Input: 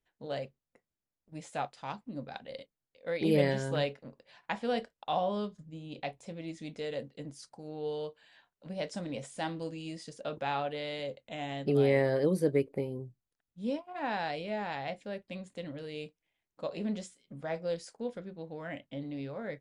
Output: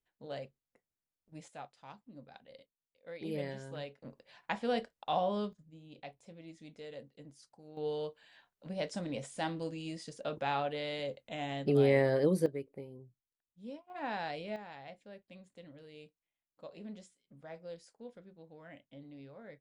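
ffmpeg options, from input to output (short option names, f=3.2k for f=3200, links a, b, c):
-af "asetnsamples=n=441:p=0,asendcmd='1.48 volume volume -12dB;4.02 volume volume -1dB;5.53 volume volume -10dB;7.77 volume volume -0.5dB;12.46 volume volume -12dB;13.9 volume volume -4dB;14.56 volume volume -12dB',volume=-5.5dB"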